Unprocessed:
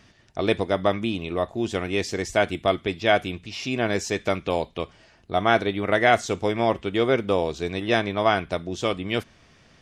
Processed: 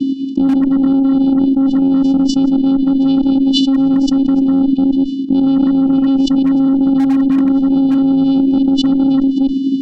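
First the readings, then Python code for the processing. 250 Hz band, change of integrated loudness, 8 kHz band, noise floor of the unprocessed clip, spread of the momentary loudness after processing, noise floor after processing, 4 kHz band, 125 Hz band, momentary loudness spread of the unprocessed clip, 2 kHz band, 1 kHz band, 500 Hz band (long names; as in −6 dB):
+20.5 dB, +11.5 dB, can't be measured, −56 dBFS, 2 LU, −19 dBFS, +5.5 dB, +2.5 dB, 8 LU, below −15 dB, −4.5 dB, −5.5 dB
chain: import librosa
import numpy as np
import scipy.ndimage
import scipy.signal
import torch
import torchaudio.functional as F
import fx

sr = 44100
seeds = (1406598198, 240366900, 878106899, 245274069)

y = fx.reverse_delay(x, sr, ms=169, wet_db=-7)
y = fx.curve_eq(y, sr, hz=(130.0, 300.0, 500.0, 760.0), db=(0, 4, 13, -1))
y = fx.vocoder(y, sr, bands=8, carrier='square', carrier_hz=270.0)
y = fx.tremolo_shape(y, sr, shape='triangle', hz=11.0, depth_pct=30)
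y = fx.brickwall_bandstop(y, sr, low_hz=380.0, high_hz=2500.0)
y = fx.air_absorb(y, sr, metres=210.0)
y = fx.cheby_harmonics(y, sr, harmonics=(4, 7), levels_db=(-25, -27), full_scale_db=-11.5)
y = fx.env_flatten(y, sr, amount_pct=100)
y = y * librosa.db_to_amplitude(1.5)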